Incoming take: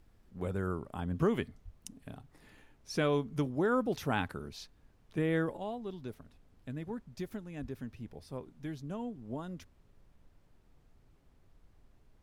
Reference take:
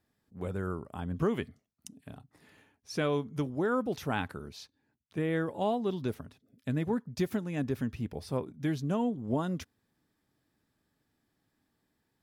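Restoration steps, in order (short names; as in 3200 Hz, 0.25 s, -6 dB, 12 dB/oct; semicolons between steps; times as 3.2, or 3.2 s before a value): de-plosive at 1.64/7.61; noise print and reduce 15 dB; gain correction +9.5 dB, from 5.57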